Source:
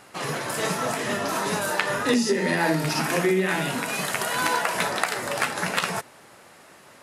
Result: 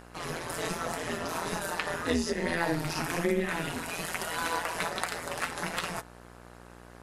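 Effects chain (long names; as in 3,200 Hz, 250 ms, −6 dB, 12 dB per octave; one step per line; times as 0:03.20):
flanger 1.2 Hz, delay 5.2 ms, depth 3.1 ms, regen −44%
amplitude modulation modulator 170 Hz, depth 70%
hum with harmonics 60 Hz, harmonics 29, −51 dBFS −3 dB per octave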